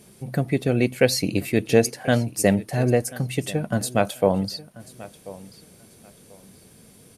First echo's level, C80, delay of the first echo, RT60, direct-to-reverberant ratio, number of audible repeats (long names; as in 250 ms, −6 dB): −19.0 dB, no reverb audible, 1,037 ms, no reverb audible, no reverb audible, 2